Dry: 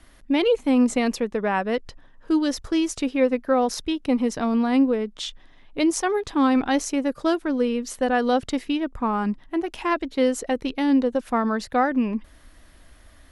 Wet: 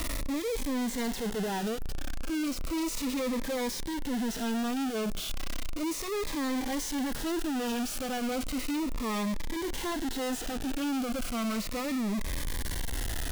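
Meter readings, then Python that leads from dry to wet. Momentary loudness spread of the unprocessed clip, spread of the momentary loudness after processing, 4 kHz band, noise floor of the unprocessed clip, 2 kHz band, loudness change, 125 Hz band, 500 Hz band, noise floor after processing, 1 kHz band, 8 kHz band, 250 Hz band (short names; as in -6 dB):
7 LU, 4 LU, -3.5 dB, -52 dBFS, -7.5 dB, -9.5 dB, n/a, -11.5 dB, -36 dBFS, -11.0 dB, -2.0 dB, -9.5 dB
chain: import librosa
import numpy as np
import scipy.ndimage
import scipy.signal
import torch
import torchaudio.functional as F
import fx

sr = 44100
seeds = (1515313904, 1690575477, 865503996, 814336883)

y = np.sign(x) * np.sqrt(np.mean(np.square(x)))
y = fx.hpss(y, sr, part='percussive', gain_db=-12)
y = fx.notch_cascade(y, sr, direction='falling', hz=0.34)
y = y * 10.0 ** (-5.5 / 20.0)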